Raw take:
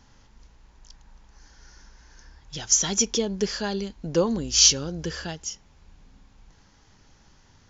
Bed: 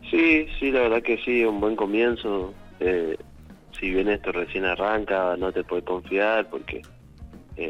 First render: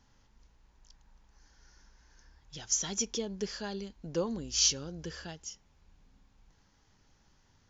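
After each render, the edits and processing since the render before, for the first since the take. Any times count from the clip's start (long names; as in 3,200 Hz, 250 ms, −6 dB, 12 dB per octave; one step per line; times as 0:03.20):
level −10 dB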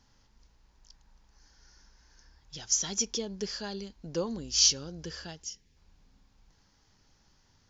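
0:05.43–0:05.77: gain on a spectral selection 530–1,600 Hz −12 dB
parametric band 4,900 Hz +5.5 dB 0.64 octaves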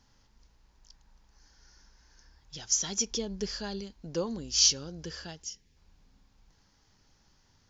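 0:03.11–0:03.81: low-shelf EQ 92 Hz +11 dB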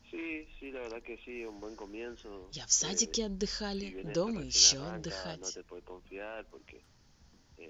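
mix in bed −21.5 dB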